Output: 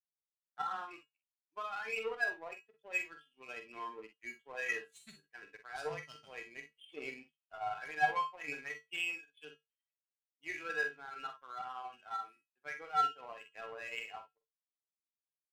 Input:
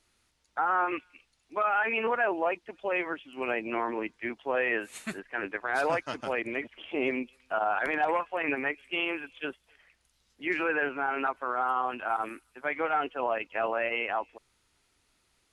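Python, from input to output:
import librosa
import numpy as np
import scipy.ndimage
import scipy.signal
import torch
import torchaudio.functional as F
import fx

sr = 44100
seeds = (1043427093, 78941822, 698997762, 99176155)

y = fx.bin_expand(x, sr, power=1.5)
y = fx.peak_eq(y, sr, hz=3800.0, db=9.0, octaves=2.4)
y = fx.comb_fb(y, sr, f0_hz=150.0, decay_s=0.25, harmonics='odd', damping=0.0, mix_pct=90)
y = fx.power_curve(y, sr, exponent=1.4)
y = fx.room_early_taps(y, sr, ms=(46, 60), db=(-9.0, -13.5))
y = y * librosa.db_to_amplitude(4.5)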